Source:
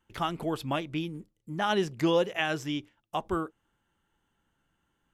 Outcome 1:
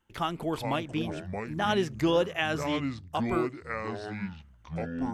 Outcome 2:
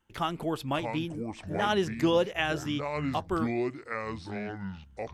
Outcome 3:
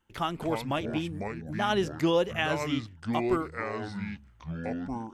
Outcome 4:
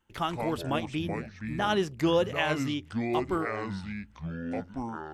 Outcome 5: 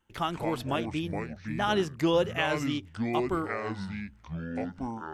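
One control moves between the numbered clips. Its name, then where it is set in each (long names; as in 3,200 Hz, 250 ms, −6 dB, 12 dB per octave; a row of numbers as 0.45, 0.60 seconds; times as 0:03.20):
delay with pitch and tempo change per echo, delay time: 328, 539, 205, 82, 124 milliseconds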